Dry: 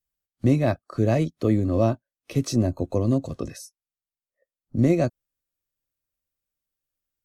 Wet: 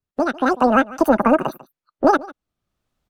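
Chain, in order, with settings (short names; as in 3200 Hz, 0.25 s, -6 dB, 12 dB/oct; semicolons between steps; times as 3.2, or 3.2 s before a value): LPF 1300 Hz 6 dB/oct; echo 0.339 s -21.5 dB; speed mistake 33 rpm record played at 78 rpm; in parallel at -1.5 dB: compressor, threshold -35 dBFS, peak gain reduction 18.5 dB; on the sum: vibrato 3 Hz 32 cents; AGC gain up to 15 dB; gain -1 dB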